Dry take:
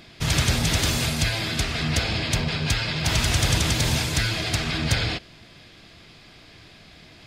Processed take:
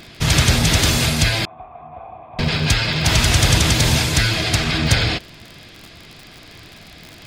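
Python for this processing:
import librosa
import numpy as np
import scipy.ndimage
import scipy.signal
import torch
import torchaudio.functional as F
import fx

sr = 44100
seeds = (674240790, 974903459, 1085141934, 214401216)

y = fx.dmg_crackle(x, sr, seeds[0], per_s=65.0, level_db=-34.0)
y = fx.formant_cascade(y, sr, vowel='a', at=(1.45, 2.39))
y = F.gain(torch.from_numpy(y), 6.5).numpy()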